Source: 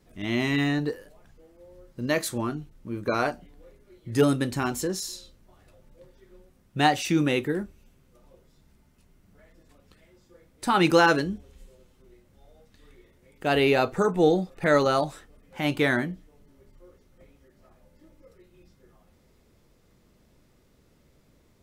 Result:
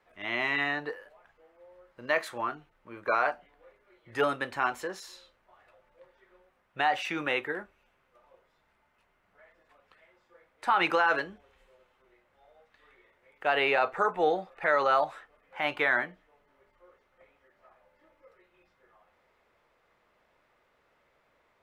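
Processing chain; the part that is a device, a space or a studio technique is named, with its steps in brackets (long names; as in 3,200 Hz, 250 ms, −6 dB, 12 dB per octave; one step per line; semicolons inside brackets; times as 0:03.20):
DJ mixer with the lows and highs turned down (three-way crossover with the lows and the highs turned down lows −24 dB, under 600 Hz, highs −21 dB, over 2,700 Hz; brickwall limiter −19 dBFS, peak gain reduction 9 dB)
level +4.5 dB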